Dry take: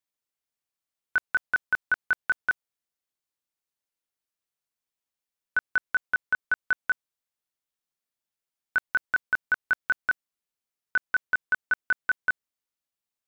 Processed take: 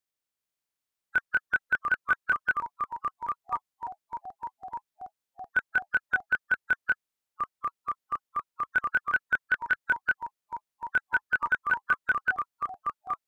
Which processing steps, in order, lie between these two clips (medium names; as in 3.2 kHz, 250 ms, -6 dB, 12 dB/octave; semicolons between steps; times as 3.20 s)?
coarse spectral quantiser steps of 30 dB; ever faster or slower copies 394 ms, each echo -4 st, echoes 3, each echo -6 dB; 9.40–9.87 s: loudspeaker Doppler distortion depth 0.24 ms